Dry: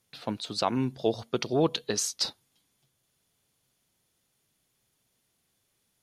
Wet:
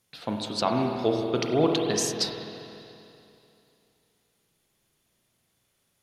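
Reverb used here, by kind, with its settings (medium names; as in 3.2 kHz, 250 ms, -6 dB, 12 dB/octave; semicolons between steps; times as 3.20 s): spring tank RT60 2.8 s, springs 33/48 ms, chirp 65 ms, DRR 1 dB; trim +1 dB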